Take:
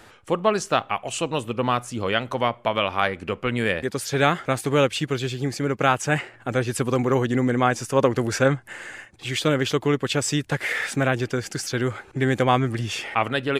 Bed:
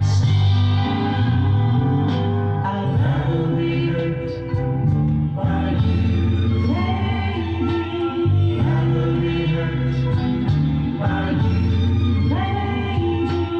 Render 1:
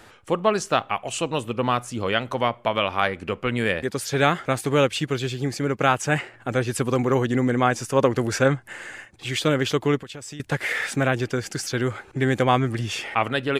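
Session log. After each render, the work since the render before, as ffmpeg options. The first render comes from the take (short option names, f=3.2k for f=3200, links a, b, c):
-filter_complex "[0:a]asettb=1/sr,asplit=3[a][b][c];[a]atrim=end=9.994[d];[b]atrim=start=9.99:end=10.4,asetpts=PTS-STARTPTS,afade=t=in:d=0.004:c=qsin,afade=t=out:st=0.406:d=0.004:c=qsin,acompressor=threshold=-35dB:ratio=6:attack=3.2:release=140:knee=1:detection=peak[e];[c]atrim=start=10.396[f];[d][e]acrossfade=d=0.004:c1=hsin:c2=qsin[g];[g][f]acrossfade=d=0.004:c1=qsin:c2=hsin"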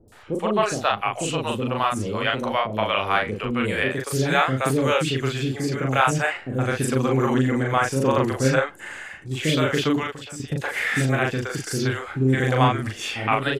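-filter_complex "[0:a]asplit=2[a][b];[b]adelay=38,volume=-2.5dB[c];[a][c]amix=inputs=2:normalize=0,acrossover=split=480|5300[d][e][f];[f]adelay=80[g];[e]adelay=120[h];[d][h][g]amix=inputs=3:normalize=0"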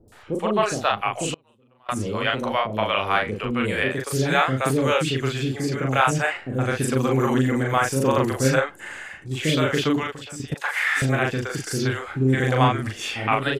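-filter_complex "[0:a]asettb=1/sr,asplit=3[a][b][c];[a]atrim=end=1.344[d];[b]atrim=start=1.34:end=1.89,asetpts=PTS-STARTPTS,afade=t=in:d=0.004:c=qsin,afade=t=out:st=0.546:d=0.004:c=qsin,agate=range=-34dB:threshold=-16dB:ratio=16:release=100:detection=peak[e];[c]atrim=start=1.886[f];[d][e]acrossfade=d=0.004:c1=hsin:c2=qsin[g];[g][f]acrossfade=d=0.004:c1=qsin:c2=hsin,asettb=1/sr,asplit=3[h][i][j];[h]atrim=end=6.974[k];[i]atrim=start=6.97:end=8.61,asetpts=PTS-STARTPTS,afade=t=in:d=0.004:c=qsin,afade=t=out:st=1.636:d=0.004:c=qsin,highshelf=f=11k:g=12[l];[j]atrim=start=8.606[m];[k][l]acrossfade=d=0.004:c1=hsin:c2=qsin[n];[n][m]acrossfade=d=0.004:c1=qsin:c2=hsin,asettb=1/sr,asplit=3[o][p][q];[o]atrim=end=10.544[r];[p]atrim=start=10.54:end=11.02,asetpts=PTS-STARTPTS,afade=t=in:d=0.004:c=qsin,afade=t=out:st=0.476:d=0.004:c=qsin,highpass=f=1k:t=q:w=1.8[s];[q]atrim=start=11.016[t];[r][s]acrossfade=d=0.004:c1=hsin:c2=qsin[u];[u][t]acrossfade=d=0.004:c1=qsin:c2=hsin"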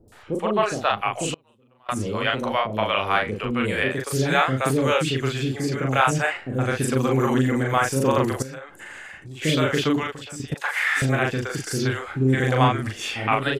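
-filter_complex "[0:a]asettb=1/sr,asplit=3[a][b][c];[a]atrim=end=0.404[d];[b]atrim=start=0.4:end=0.9,asetpts=PTS-STARTPTS,afade=t=in:d=0.004:c=qsin,afade=t=out:st=0.496:d=0.004:c=qsin,bass=f=250:g=-2,treble=f=4k:g=-5[e];[c]atrim=start=0.896[f];[d][e]acrossfade=d=0.004:c1=hsin:c2=qsin[g];[g][f]acrossfade=d=0.004:c1=qsin:c2=hsin,asettb=1/sr,asplit=3[h][i][j];[h]atrim=end=8.424[k];[i]atrim=start=8.42:end=9.42,asetpts=PTS-STARTPTS,afade=t=in:d=0.004:c=qsin,afade=t=out:st=0.996:d=0.004:c=qsin,acompressor=threshold=-35dB:ratio=5:attack=3.2:release=140:knee=1:detection=peak[l];[j]atrim=start=9.416[m];[k][l]acrossfade=d=0.004:c1=hsin:c2=qsin[n];[n][m]acrossfade=d=0.004:c1=qsin:c2=hsin"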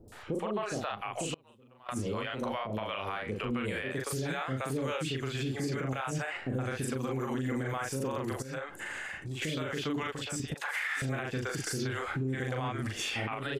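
-af "acompressor=threshold=-27dB:ratio=6,alimiter=level_in=0.5dB:limit=-24dB:level=0:latency=1:release=99,volume=-0.5dB"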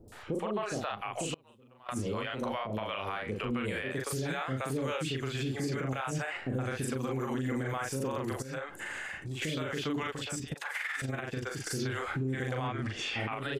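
-filter_complex "[0:a]asplit=3[a][b][c];[a]afade=t=out:st=10.35:d=0.02[d];[b]tremolo=f=21:d=0.519,afade=t=in:st=10.35:d=0.02,afade=t=out:st=11.7:d=0.02[e];[c]afade=t=in:st=11.7:d=0.02[f];[d][e][f]amix=inputs=3:normalize=0,asettb=1/sr,asplit=3[g][h][i];[g]atrim=end=12.674[j];[h]atrim=start=12.67:end=13.2,asetpts=PTS-STARTPTS,afade=t=in:d=0.004:c=qsin,afade=t=out:st=0.526:d=0.004:c=qsin,lowpass=5.1k[k];[i]atrim=start=13.196[l];[j][k]acrossfade=d=0.004:c1=hsin:c2=qsin[m];[m][l]acrossfade=d=0.004:c1=qsin:c2=hsin"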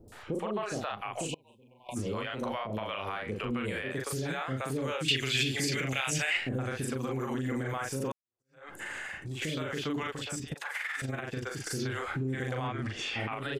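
-filter_complex "[0:a]asplit=3[a][b][c];[a]afade=t=out:st=1.27:d=0.02[d];[b]asuperstop=centerf=1500:order=20:qfactor=1.3,afade=t=in:st=1.27:d=0.02,afade=t=out:st=1.95:d=0.02[e];[c]afade=t=in:st=1.95:d=0.02[f];[d][e][f]amix=inputs=3:normalize=0,asettb=1/sr,asplit=3[g][h][i];[g]atrim=end=5.084[j];[h]atrim=start=5.08:end=6.49,asetpts=PTS-STARTPTS,afade=t=in:d=0.004:c=qsin,afade=t=out:st=1.406:d=0.004:c=qsin,highshelf=f=1.7k:t=q:w=1.5:g=10.5[k];[i]atrim=start=6.486[l];[j][k]acrossfade=d=0.004:c1=hsin:c2=qsin[m];[m][l]acrossfade=d=0.004:c1=qsin:c2=hsin,asplit=2[n][o];[n]atrim=end=8.12,asetpts=PTS-STARTPTS,afade=t=out:st=8.116:d=0.004:c=hsin[p];[o]atrim=start=8.12,asetpts=PTS-STARTPTS,afade=t=in:d=0.57:c=exp[q];[p][q]concat=n=2:v=0:a=1"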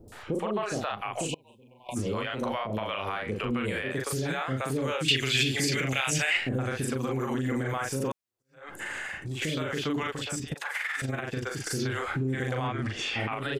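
-af "volume=3.5dB"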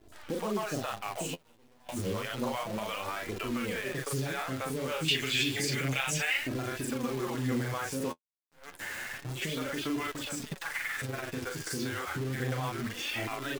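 -af "acrusher=bits=7:dc=4:mix=0:aa=0.000001,flanger=delay=2.9:depth=9.4:regen=28:speed=0.3:shape=sinusoidal"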